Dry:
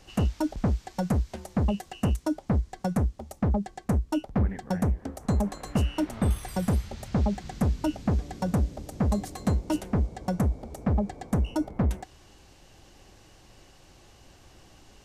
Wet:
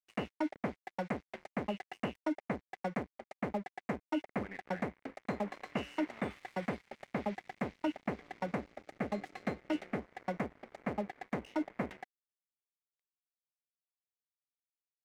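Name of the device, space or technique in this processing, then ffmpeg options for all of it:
pocket radio on a weak battery: -filter_complex "[0:a]highpass=280,lowpass=3100,aeval=exprs='sgn(val(0))*max(abs(val(0))-0.00447,0)':channel_layout=same,equalizer=frequency=2100:width_type=o:width=0.51:gain=11,asettb=1/sr,asplit=3[link_01][link_02][link_03];[link_01]atrim=end=8.684[link_04];[link_02]atrim=start=8.68:end=9.99,asetpts=PTS-STARTPTS,afade=type=in:duration=0.004:curve=qsin,afade=type=out:start_time=1.306:duration=0.004:curve=qsin,bandreject=frequency=990:width=5.4[link_05];[link_03]atrim=start=9.986[link_06];[link_04][link_05]acrossfade=duration=0.004:curve1=hsin:curve2=qsin[link_07];[link_07][link_06]acrossfade=duration=0.004:curve1=qsin:curve2=hsin,volume=-4dB"

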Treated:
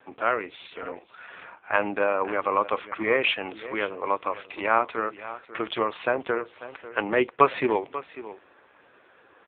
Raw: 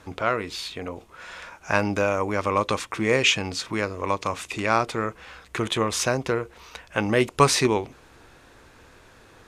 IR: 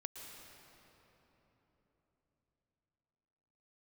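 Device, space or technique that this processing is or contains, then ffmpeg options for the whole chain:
satellite phone: -filter_complex "[0:a]asplit=3[link_01][link_02][link_03];[link_01]afade=type=out:start_time=0.59:duration=0.02[link_04];[link_02]lowshelf=frequency=150:gain=3.5,afade=type=in:start_time=0.59:duration=0.02,afade=type=out:start_time=1.74:duration=0.02[link_05];[link_03]afade=type=in:start_time=1.74:duration=0.02[link_06];[link_04][link_05][link_06]amix=inputs=3:normalize=0,highpass=350,lowpass=3300,aecho=1:1:543:0.178,volume=1dB" -ar 8000 -c:a libopencore_amrnb -b:a 5900

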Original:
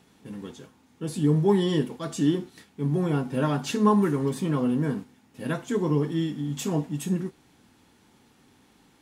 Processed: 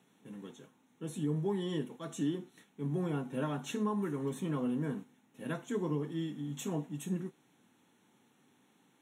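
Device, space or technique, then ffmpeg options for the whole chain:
PA system with an anti-feedback notch: -af "highpass=frequency=130:width=0.5412,highpass=frequency=130:width=1.3066,asuperstop=centerf=4800:order=4:qfactor=3.1,alimiter=limit=-16dB:level=0:latency=1:release=439,volume=-8.5dB"

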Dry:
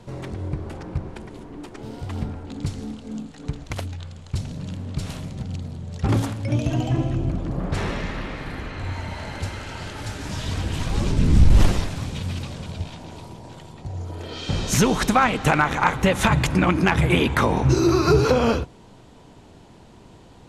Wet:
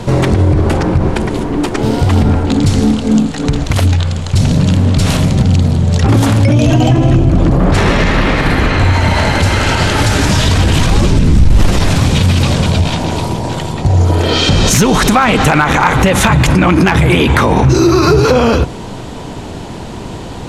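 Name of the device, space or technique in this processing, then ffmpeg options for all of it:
loud club master: -af "acompressor=threshold=-20dB:ratio=2,asoftclip=type=hard:threshold=-13.5dB,alimiter=level_in=23.5dB:limit=-1dB:release=50:level=0:latency=1,volume=-1dB"

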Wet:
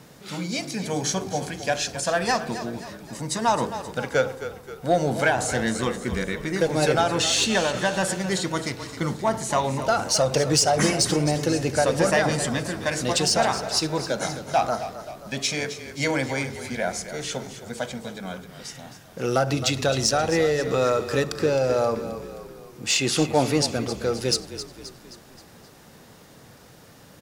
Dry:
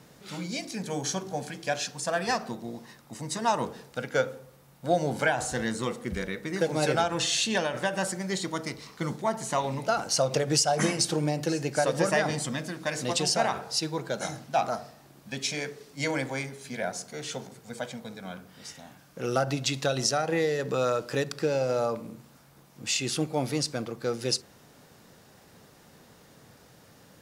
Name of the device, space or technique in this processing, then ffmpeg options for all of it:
parallel distortion: -filter_complex "[0:a]asplit=2[link_01][link_02];[link_02]asoftclip=type=hard:threshold=-23dB,volume=-5.5dB[link_03];[link_01][link_03]amix=inputs=2:normalize=0,asettb=1/sr,asplit=3[link_04][link_05][link_06];[link_04]atrim=end=22.904[link_07];[link_05]atrim=start=22.9:end=23.69,asetpts=PTS-STARTPTS,afade=type=in:duration=0.004:curve=qsin,afade=type=out:start_time=0.786:duration=0.004:curve=qsin,equalizer=frequency=910:width=0.4:gain=5[link_08];[link_06]atrim=start=23.686[link_09];[link_07][link_08]acrossfade=duration=0.004:curve1=hsin:curve2=qsin[link_10];[link_10][link_09]acrossfade=duration=0.004:curve1=qsin:curve2=hsin,asplit=6[link_11][link_12][link_13][link_14][link_15][link_16];[link_12]adelay=264,afreqshift=-32,volume=-12dB[link_17];[link_13]adelay=528,afreqshift=-64,volume=-17.7dB[link_18];[link_14]adelay=792,afreqshift=-96,volume=-23.4dB[link_19];[link_15]adelay=1056,afreqshift=-128,volume=-29dB[link_20];[link_16]adelay=1320,afreqshift=-160,volume=-34.7dB[link_21];[link_11][link_17][link_18][link_19][link_20][link_21]amix=inputs=6:normalize=0,volume=1.5dB"

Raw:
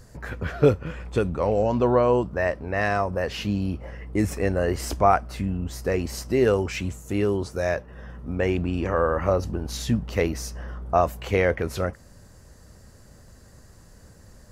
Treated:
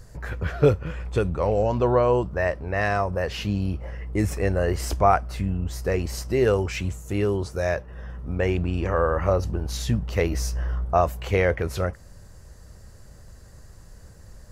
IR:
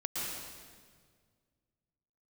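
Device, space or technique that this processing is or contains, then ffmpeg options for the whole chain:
low shelf boost with a cut just above: -filter_complex "[0:a]asettb=1/sr,asplit=3[link_01][link_02][link_03];[link_01]atrim=end=10.304[link_04];[link_02]atrim=start=10.3:end=10.85,asetpts=PTS-STARTPTS,afade=type=in:duration=0.004:curve=qsin,afade=type=out:start_time=0.546:duration=0.004:curve=qsin,asplit=2[link_05][link_06];[link_06]adelay=16,volume=-2.5dB[link_07];[link_05][link_07]amix=inputs=2:normalize=0,atrim=end_sample=24255[link_08];[link_03]atrim=start=10.846[link_09];[link_04][link_08]acrossfade=duration=0.004:curve1=hsin:curve2=qsin[link_10];[link_10][link_09]acrossfade=duration=0.004:curve1=qsin:curve2=hsin,lowshelf=frequency=71:gain=8,equalizer=frequency=250:width_type=o:width=0.5:gain=-5.5"

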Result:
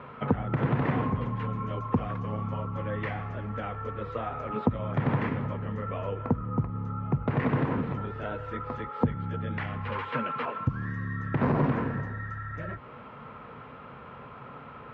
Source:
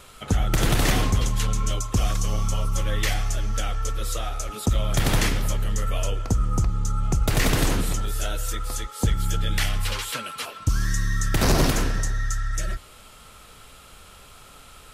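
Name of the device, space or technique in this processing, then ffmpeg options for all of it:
bass amplifier: -af "acompressor=threshold=-29dB:ratio=4,highpass=frequency=73:width=0.5412,highpass=frequency=73:width=1.3066,equalizer=frequency=74:width_type=q:width=4:gain=-7,equalizer=frequency=140:width_type=q:width=4:gain=9,equalizer=frequency=240:width_type=q:width=4:gain=9,equalizer=frequency=480:width_type=q:width=4:gain=6,equalizer=frequency=990:width_type=q:width=4:gain=8,lowpass=frequency=2100:width=0.5412,lowpass=frequency=2100:width=1.3066,volume=3dB"

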